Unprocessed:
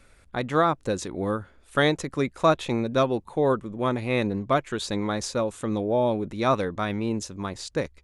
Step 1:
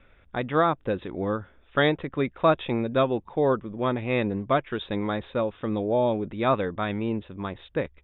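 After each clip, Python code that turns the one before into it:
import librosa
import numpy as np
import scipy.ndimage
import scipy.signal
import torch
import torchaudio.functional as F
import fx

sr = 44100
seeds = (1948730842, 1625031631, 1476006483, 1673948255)

y = scipy.signal.sosfilt(scipy.signal.cheby1(10, 1.0, 3700.0, 'lowpass', fs=sr, output='sos'), x)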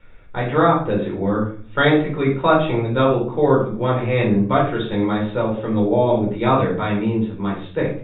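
y = fx.room_shoebox(x, sr, seeds[0], volume_m3=450.0, walls='furnished', distance_m=4.5)
y = F.gain(torch.from_numpy(y), -1.0).numpy()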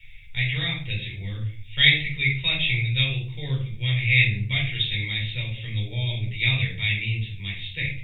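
y = fx.curve_eq(x, sr, hz=(130.0, 220.0, 1400.0, 2100.0, 3500.0, 4900.0), db=(0, -24, -29, 11, 10, 12))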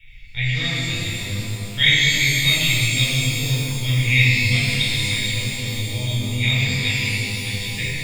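y = fx.rev_shimmer(x, sr, seeds[1], rt60_s=3.2, semitones=12, shimmer_db=-8, drr_db=-2.5)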